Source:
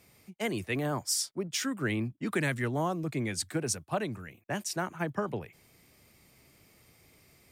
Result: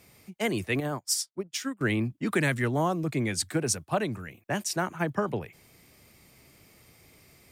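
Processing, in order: 0.80–1.81 s: upward expansion 2.5:1, over -46 dBFS; trim +4 dB

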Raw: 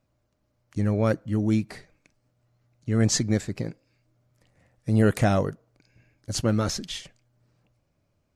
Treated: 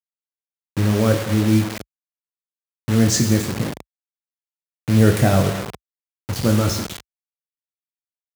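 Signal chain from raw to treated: bass shelf 220 Hz +5.5 dB; reverberation RT60 1.2 s, pre-delay 42 ms, DRR 7 dB; level-controlled noise filter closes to 1.5 kHz, open at -15 dBFS; peaking EQ 11 kHz +4 dB 0.71 oct; early reflections 22 ms -7 dB, 47 ms -15.5 dB; bit crusher 5-bit; high-pass 53 Hz 24 dB/octave; trim +2.5 dB

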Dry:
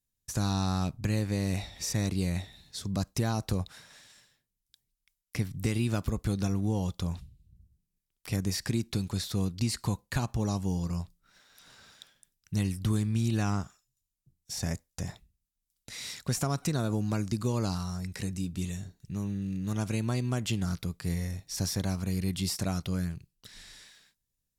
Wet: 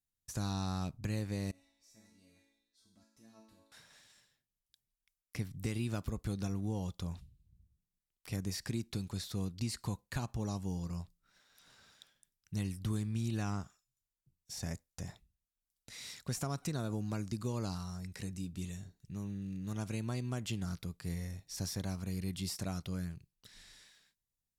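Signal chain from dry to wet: 1.51–3.72 s: chord resonator A3 major, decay 0.75 s; trim -7.5 dB

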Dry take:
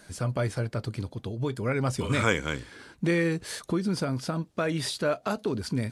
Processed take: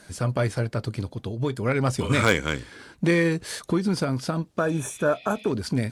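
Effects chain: Chebyshev shaper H 5 -9 dB, 7 -13 dB, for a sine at -8.5 dBFS; spectral replace 4.61–5.49 s, 1.8–5.6 kHz before; trim +1 dB

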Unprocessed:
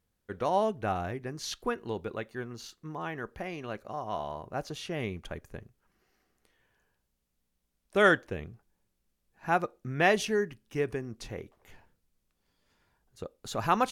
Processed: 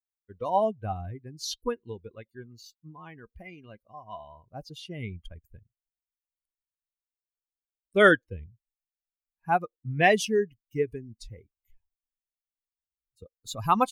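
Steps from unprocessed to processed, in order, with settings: expander on every frequency bin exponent 2; trim +6.5 dB

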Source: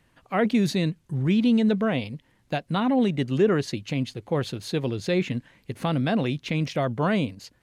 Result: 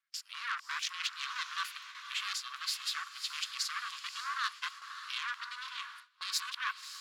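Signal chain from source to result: reverse the whole clip; peak limiter -16.5 dBFS, peak gain reduction 6.5 dB; ring modulator 230 Hz; saturation -27 dBFS, distortion -10 dB; rippled Chebyshev high-pass 1 kHz, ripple 3 dB; speed mistake 44.1 kHz file played as 48 kHz; echo that smears into a reverb 574 ms, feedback 46%, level -10 dB; gate with hold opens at -44 dBFS; trim +7 dB

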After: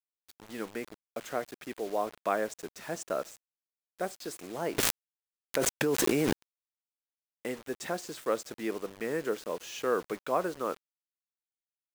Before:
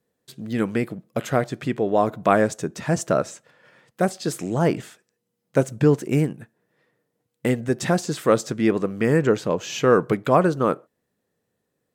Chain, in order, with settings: high-pass 330 Hz 12 dB/octave; word length cut 6-bit, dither none; 4.78–6.34 s: level flattener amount 100%; trim -11 dB

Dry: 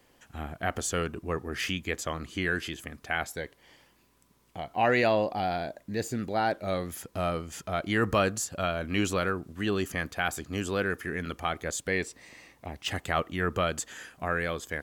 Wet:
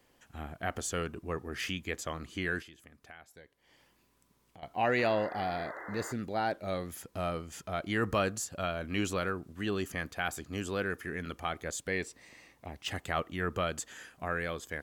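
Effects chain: 2.62–4.63 s: compression 2.5:1, threshold -53 dBFS, peak gain reduction 18.5 dB; 4.98–6.13 s: painted sound noise 300–2100 Hz -40 dBFS; trim -4.5 dB

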